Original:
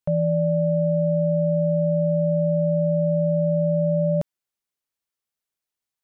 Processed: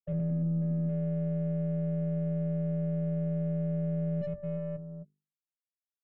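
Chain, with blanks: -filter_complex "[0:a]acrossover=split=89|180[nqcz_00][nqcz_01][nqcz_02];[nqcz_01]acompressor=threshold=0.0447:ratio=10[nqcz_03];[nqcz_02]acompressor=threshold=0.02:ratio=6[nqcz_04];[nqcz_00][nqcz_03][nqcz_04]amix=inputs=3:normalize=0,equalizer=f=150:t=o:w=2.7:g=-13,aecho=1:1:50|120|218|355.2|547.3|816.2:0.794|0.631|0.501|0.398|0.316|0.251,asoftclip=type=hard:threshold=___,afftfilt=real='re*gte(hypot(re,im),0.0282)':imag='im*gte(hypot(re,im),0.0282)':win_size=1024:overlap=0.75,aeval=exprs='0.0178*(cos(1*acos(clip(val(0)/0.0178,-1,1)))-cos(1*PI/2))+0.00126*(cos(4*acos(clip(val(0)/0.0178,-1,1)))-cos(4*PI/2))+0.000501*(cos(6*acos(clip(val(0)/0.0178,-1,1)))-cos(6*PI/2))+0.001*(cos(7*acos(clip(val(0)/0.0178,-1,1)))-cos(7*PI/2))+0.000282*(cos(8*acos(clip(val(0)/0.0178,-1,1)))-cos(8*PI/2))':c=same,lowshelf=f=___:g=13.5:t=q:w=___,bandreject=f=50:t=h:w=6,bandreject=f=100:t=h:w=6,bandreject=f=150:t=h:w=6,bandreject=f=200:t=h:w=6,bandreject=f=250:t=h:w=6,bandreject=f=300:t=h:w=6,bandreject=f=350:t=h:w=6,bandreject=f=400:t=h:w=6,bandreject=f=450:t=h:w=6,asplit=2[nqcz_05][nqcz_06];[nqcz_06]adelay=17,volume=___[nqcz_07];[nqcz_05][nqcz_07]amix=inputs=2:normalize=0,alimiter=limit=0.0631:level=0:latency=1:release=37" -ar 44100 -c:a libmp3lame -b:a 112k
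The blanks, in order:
0.0106, 530, 1.5, 0.251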